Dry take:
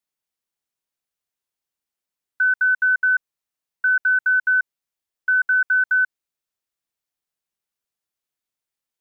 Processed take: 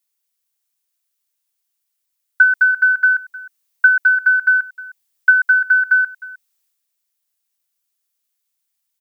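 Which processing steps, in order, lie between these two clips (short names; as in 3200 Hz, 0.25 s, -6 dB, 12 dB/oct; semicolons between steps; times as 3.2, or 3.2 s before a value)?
tilt +3.5 dB/oct; transient shaper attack +9 dB, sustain +5 dB; echo 0.309 s -20 dB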